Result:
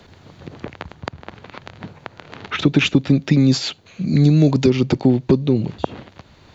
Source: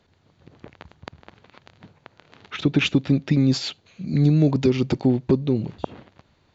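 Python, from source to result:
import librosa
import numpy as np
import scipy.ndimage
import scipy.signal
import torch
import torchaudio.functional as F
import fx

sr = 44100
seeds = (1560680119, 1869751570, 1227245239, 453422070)

y = fx.high_shelf(x, sr, hz=6300.0, db=9.0, at=(2.59, 4.7))
y = fx.band_squash(y, sr, depth_pct=40)
y = F.gain(torch.from_numpy(y), 4.5).numpy()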